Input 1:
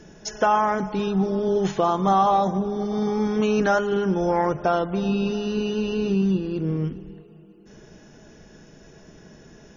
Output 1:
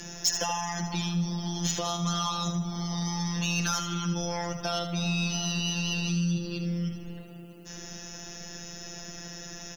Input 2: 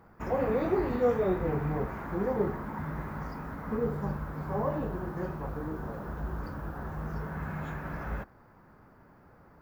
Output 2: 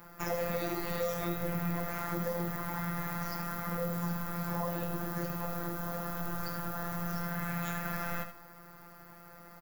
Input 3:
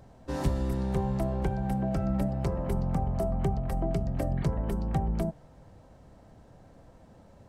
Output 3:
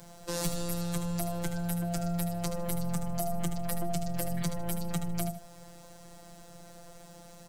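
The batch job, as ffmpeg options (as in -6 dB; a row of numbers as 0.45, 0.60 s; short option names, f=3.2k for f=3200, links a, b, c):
-filter_complex "[0:a]afftfilt=real='hypot(re,im)*cos(PI*b)':imag='0':win_size=1024:overlap=0.75,acrossover=split=160|3000[a][b][c];[b]acompressor=threshold=-36dB:ratio=4[d];[a][d][c]amix=inputs=3:normalize=0,adynamicequalizer=threshold=0.00141:dfrequency=380:dqfactor=5:tfrequency=380:tqfactor=5:attack=5:release=100:ratio=0.375:range=2.5:mode=cutabove:tftype=bell,asplit=2[e][f];[f]acompressor=threshold=-44dB:ratio=6,volume=-2dB[g];[e][g]amix=inputs=2:normalize=0,crystalizer=i=6.5:c=0,asoftclip=type=tanh:threshold=-18dB,aecho=1:1:77|154|231:0.355|0.0923|0.024"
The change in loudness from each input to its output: -7.5, -2.5, -3.5 LU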